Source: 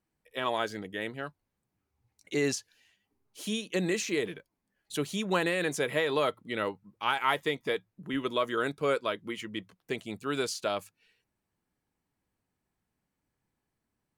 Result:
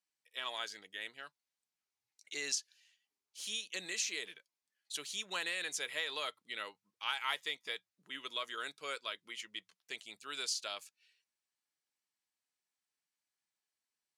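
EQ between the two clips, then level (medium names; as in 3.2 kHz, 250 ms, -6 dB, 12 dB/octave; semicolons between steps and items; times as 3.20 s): band-pass filter 5.3 kHz, Q 0.86; +1.0 dB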